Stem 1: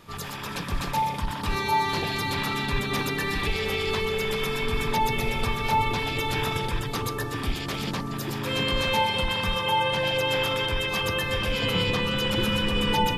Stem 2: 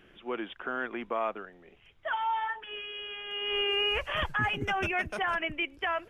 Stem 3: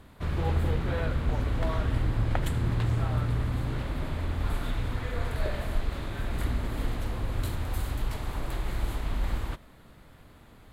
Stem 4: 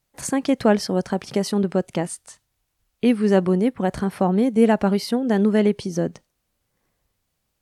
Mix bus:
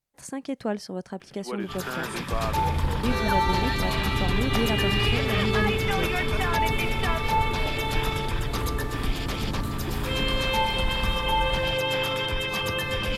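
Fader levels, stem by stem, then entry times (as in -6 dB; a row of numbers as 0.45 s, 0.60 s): -1.0 dB, 0.0 dB, -1.5 dB, -11.5 dB; 1.60 s, 1.20 s, 2.20 s, 0.00 s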